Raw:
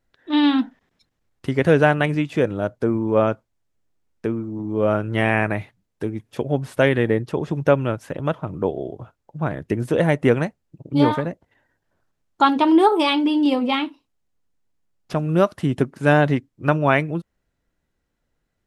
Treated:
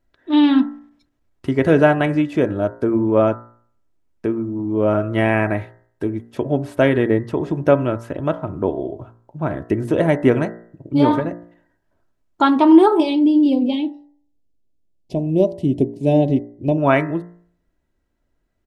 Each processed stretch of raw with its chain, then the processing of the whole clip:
13–16.78 Butterworth band-stop 1400 Hz, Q 0.56 + high shelf 5200 Hz -7 dB
whole clip: tilt shelf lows +3.5 dB, about 1500 Hz; comb 3.1 ms, depth 35%; de-hum 58.06 Hz, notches 35

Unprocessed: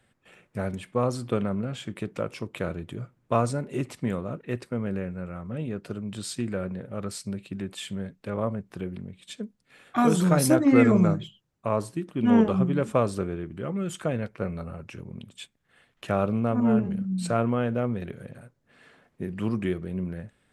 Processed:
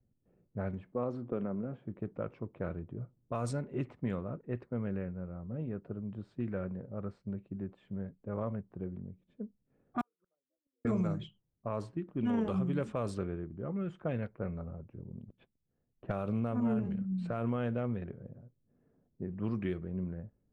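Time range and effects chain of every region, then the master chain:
0.92–1.85 HPF 280 Hz + tilt -3.5 dB/oct + compressor 1.5:1, threshold -30 dBFS
10.01–10.85 formant sharpening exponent 2 + Butterworth band-pass 2000 Hz, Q 0.59 + flipped gate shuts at -35 dBFS, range -42 dB
15.28–16.12 LPF 3900 Hz + sample leveller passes 2
whole clip: low-pass opened by the level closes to 330 Hz, open at -19 dBFS; low shelf 75 Hz +7.5 dB; limiter -16.5 dBFS; gain -7 dB

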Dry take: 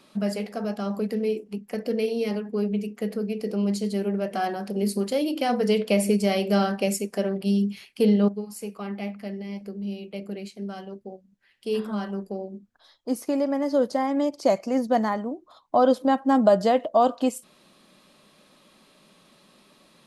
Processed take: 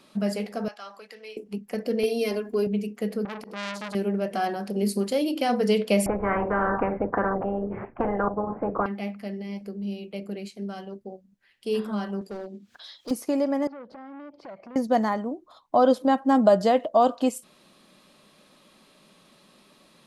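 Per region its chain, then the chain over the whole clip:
0.68–1.37 HPF 1200 Hz + air absorption 56 m
2.03–2.67 gate with hold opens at -28 dBFS, closes at -32 dBFS + high shelf 7700 Hz +8.5 dB + comb 2.9 ms, depth 84%
3.25–3.95 auto swell 0.157 s + core saturation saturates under 2800 Hz
6.06–8.86 Bessel low-pass 750 Hz, order 8 + dynamic EQ 510 Hz, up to +6 dB, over -44 dBFS, Q 7.7 + spectral compressor 10:1
12.21–13.11 weighting filter D + upward compressor, threshold -38 dBFS + hard clip -31 dBFS
13.67–14.76 air absorption 400 m + compressor 5:1, threshold -37 dBFS + core saturation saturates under 950 Hz
whole clip: dry

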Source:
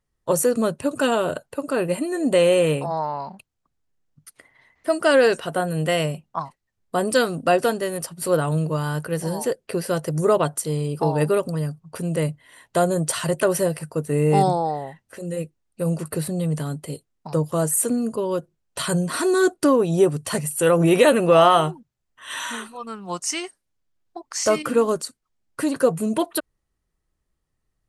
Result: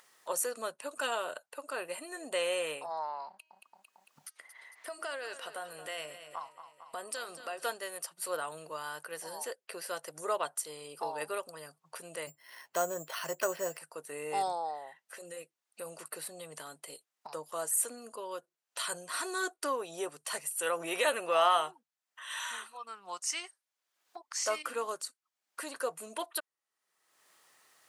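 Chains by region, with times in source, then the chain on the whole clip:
3.28–7.64 compressor 5:1, threshold -23 dBFS + de-hum 316.4 Hz, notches 21 + feedback echo 0.225 s, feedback 39%, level -13 dB
12.27–13.78 low shelf 330 Hz +10 dB + careless resampling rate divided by 6×, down filtered, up hold
whole clip: HPF 810 Hz 12 dB/oct; upward compressor, threshold -33 dBFS; gain -8 dB

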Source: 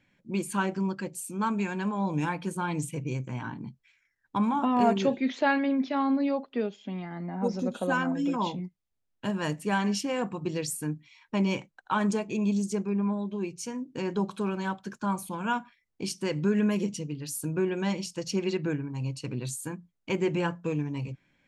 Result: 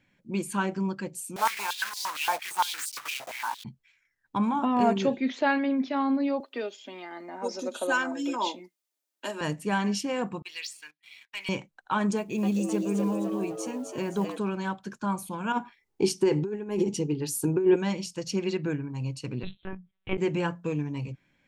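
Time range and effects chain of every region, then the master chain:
1.36–3.65 block floating point 3-bit + high shelf 4800 Hz +4 dB + stepped high-pass 8.7 Hz 670–4700 Hz
6.4–9.41 HPF 310 Hz 24 dB/oct + high shelf 3500 Hz +10 dB + comb 3.3 ms, depth 34%
10.42–11.49 Butterworth band-pass 3000 Hz, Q 1.1 + sample leveller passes 2
12.17–14.38 bell 5100 Hz -6 dB 0.28 oct + short-mantissa float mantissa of 4-bit + frequency-shifting echo 0.258 s, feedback 43%, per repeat +120 Hz, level -5.5 dB
15.52–17.76 negative-ratio compressor -30 dBFS, ratio -0.5 + small resonant body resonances 390/830 Hz, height 14 dB, ringing for 35 ms
19.43–20.18 monotone LPC vocoder at 8 kHz 190 Hz + mismatched tape noise reduction encoder only
whole clip: dry

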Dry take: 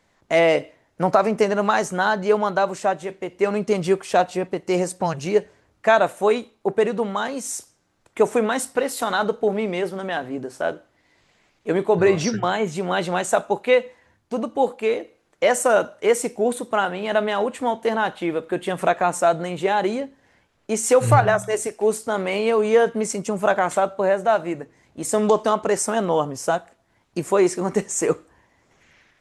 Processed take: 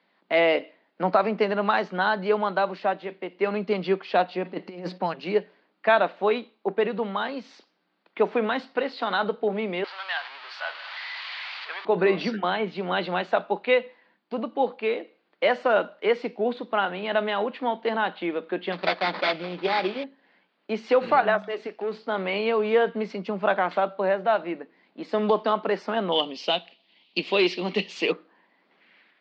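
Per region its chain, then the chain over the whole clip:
4.45–4.98 negative-ratio compressor -27 dBFS, ratio -0.5 + low shelf 130 Hz +10 dB
9.84–11.85 zero-crossing step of -25.5 dBFS + HPF 920 Hz 24 dB/oct + high shelf 9300 Hz +4 dB
18.72–20.04 expander -34 dBFS + sample-rate reducer 2900 Hz, jitter 20% + notch comb 230 Hz
21.47–22.06 sample leveller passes 1 + compressor 1.5:1, threshold -33 dBFS
26.12–28.12 resonant high shelf 2100 Hz +11 dB, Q 3 + hard clip -10 dBFS
whole clip: Chebyshev band-pass 180–4600 Hz, order 5; bell 2600 Hz +3.5 dB 1.9 oct; gain -4 dB

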